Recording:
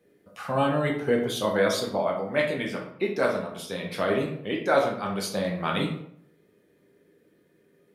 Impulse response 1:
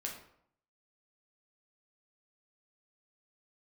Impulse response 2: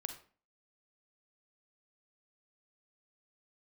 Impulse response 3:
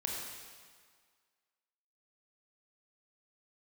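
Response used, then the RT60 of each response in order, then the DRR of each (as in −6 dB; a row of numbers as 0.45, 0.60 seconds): 1; 0.70, 0.40, 1.8 seconds; −1.0, 6.5, −2.0 decibels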